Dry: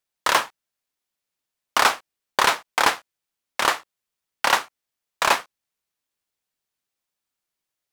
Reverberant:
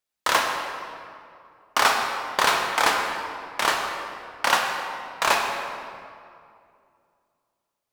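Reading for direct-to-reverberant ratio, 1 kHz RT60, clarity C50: 1.0 dB, 2.3 s, 2.5 dB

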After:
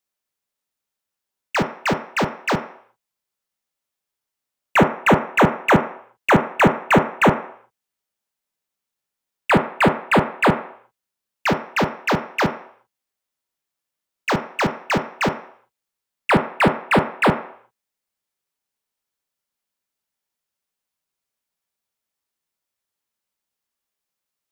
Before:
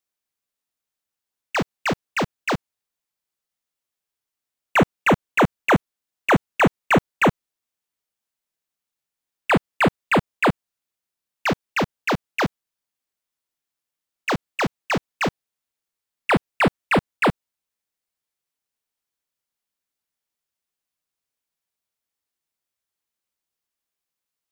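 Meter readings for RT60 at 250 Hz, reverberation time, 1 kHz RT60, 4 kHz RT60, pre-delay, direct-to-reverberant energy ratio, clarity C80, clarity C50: 0.45 s, 0.60 s, 0.65 s, 0.55 s, 3 ms, 5.5 dB, 14.0 dB, 10.0 dB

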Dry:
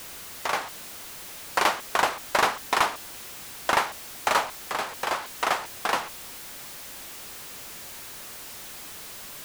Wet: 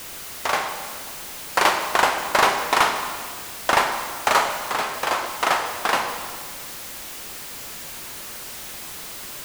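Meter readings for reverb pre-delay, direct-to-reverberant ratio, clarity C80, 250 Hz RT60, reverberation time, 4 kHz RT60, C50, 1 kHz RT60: 24 ms, 4.5 dB, 7.5 dB, 2.0 s, 1.8 s, 1.6 s, 6.0 dB, 1.7 s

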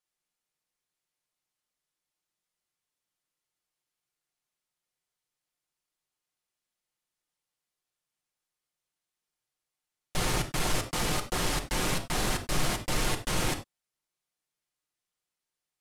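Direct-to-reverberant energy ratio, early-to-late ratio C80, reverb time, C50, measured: 4.0 dB, 17.5 dB, not exponential, 11.0 dB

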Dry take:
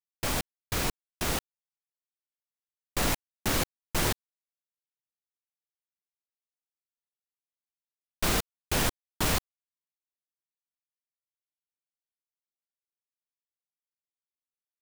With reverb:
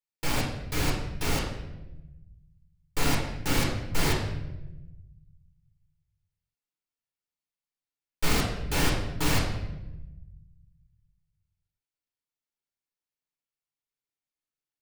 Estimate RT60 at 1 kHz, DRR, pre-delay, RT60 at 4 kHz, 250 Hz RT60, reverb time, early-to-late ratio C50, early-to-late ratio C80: 0.85 s, -3.5 dB, 6 ms, 0.75 s, 1.7 s, 1.0 s, 3.5 dB, 6.5 dB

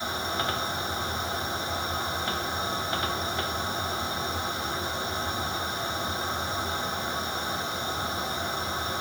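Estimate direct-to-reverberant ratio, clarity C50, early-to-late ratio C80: -9.0 dB, 7.5 dB, 12.0 dB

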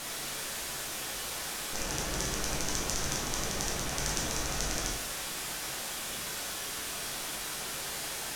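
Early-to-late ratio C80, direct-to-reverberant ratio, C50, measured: 7.0 dB, -2.5 dB, 4.0 dB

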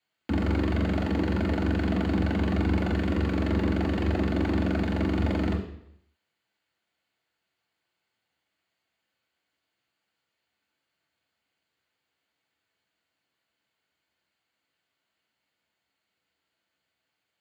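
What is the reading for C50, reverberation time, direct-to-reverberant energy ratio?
8.0 dB, 0.75 s, -2.5 dB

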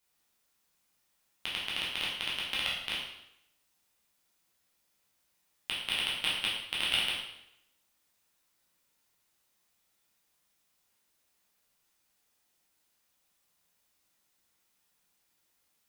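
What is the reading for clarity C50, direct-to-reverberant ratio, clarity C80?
2.0 dB, -6.0 dB, 5.0 dB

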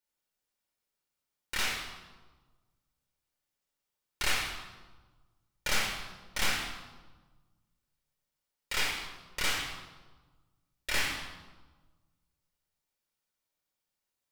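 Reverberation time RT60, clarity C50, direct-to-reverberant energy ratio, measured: 1.3 s, 2.5 dB, -2.5 dB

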